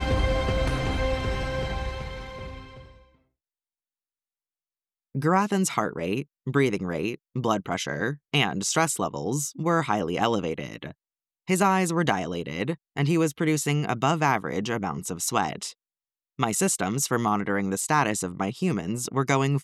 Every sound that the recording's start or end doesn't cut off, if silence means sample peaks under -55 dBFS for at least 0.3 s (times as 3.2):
5.15–10.93
11.47–15.73